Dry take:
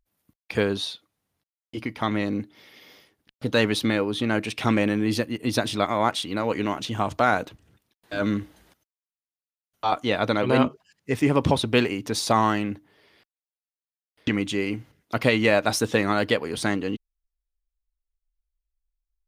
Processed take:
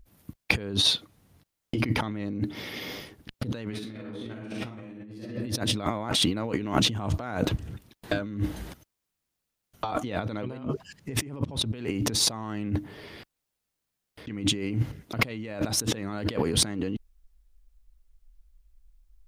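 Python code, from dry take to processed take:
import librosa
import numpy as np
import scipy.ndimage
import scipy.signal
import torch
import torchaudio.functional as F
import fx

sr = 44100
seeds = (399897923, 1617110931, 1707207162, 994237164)

y = fx.reverb_throw(x, sr, start_s=3.68, length_s=1.54, rt60_s=0.93, drr_db=-5.5)
y = fx.low_shelf(y, sr, hz=310.0, db=11.0)
y = fx.over_compress(y, sr, threshold_db=-32.0, ratio=-1.0)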